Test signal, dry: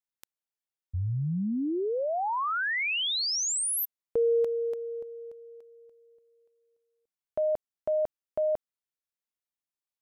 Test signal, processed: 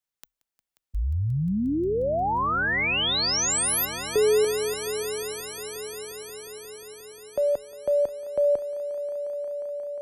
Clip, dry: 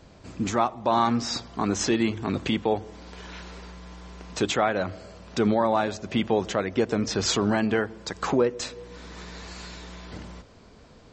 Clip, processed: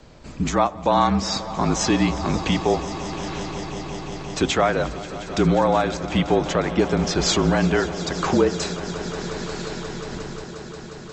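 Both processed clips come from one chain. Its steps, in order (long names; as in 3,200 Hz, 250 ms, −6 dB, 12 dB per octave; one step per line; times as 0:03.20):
echo that builds up and dies away 178 ms, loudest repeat 5, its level −17 dB
frequency shifter −39 Hz
level +4 dB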